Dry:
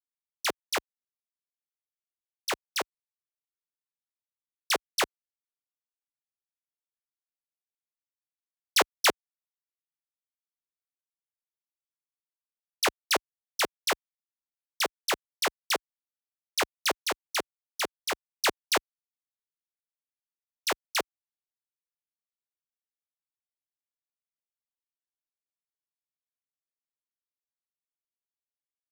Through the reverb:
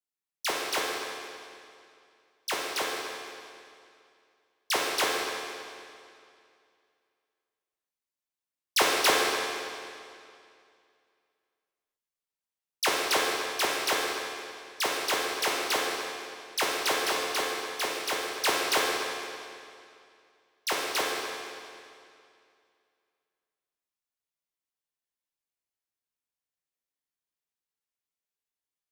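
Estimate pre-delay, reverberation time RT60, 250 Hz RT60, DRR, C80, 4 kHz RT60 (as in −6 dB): 11 ms, 2.4 s, 2.4 s, −3.5 dB, 1.0 dB, 2.2 s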